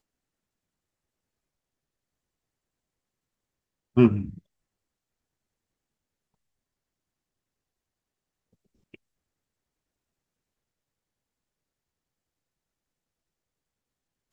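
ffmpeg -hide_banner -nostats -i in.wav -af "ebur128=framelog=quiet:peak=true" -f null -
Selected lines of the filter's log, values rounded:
Integrated loudness:
  I:         -22.7 LUFS
  Threshold: -35.6 LUFS
Loudness range:
  LRA:         8.1 LU
  Threshold: -52.9 LUFS
  LRA low:   -37.8 LUFS
  LRA high:  -29.6 LUFS
True peak:
  Peak:       -6.0 dBFS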